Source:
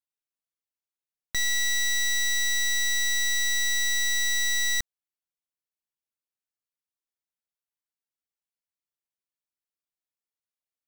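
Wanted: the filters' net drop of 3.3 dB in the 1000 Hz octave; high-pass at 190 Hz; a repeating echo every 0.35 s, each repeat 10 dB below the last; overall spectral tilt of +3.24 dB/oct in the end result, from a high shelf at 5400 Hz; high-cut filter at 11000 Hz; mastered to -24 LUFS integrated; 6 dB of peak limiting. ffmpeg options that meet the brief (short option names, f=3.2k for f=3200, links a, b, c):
-af "highpass=190,lowpass=11k,equalizer=f=1k:t=o:g=-5,highshelf=f=5.4k:g=8.5,alimiter=limit=-21.5dB:level=0:latency=1,aecho=1:1:350|700|1050|1400:0.316|0.101|0.0324|0.0104,volume=3dB"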